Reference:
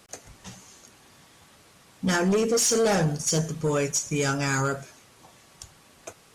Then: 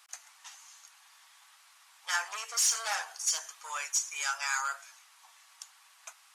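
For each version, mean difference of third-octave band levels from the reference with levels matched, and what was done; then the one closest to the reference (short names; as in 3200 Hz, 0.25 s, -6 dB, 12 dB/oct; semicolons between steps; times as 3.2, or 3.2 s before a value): 12.0 dB: steep high-pass 860 Hz 36 dB/oct; gain -3 dB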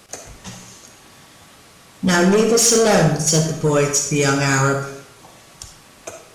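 2.0 dB: digital reverb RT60 0.67 s, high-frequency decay 0.8×, pre-delay 15 ms, DRR 5 dB; gain +7.5 dB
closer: second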